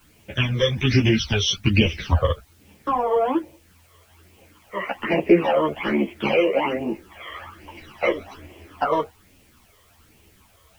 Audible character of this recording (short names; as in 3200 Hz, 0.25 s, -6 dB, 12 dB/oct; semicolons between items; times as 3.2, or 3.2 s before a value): phasing stages 12, 1.2 Hz, lowest notch 250–1400 Hz; a quantiser's noise floor 10-bit, dither triangular; a shimmering, thickened sound